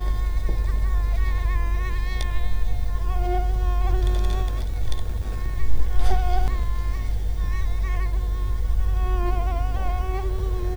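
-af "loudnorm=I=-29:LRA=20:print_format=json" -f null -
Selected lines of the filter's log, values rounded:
"input_i" : "-26.5",
"input_tp" : "-6.4",
"input_lra" : "0.6",
"input_thresh" : "-36.5",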